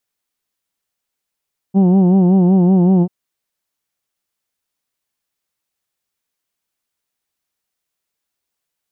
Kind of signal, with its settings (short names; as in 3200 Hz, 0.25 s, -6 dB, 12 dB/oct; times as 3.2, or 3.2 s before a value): formant vowel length 1.34 s, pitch 187 Hz, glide -0.5 st, F1 260 Hz, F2 820 Hz, F3 2900 Hz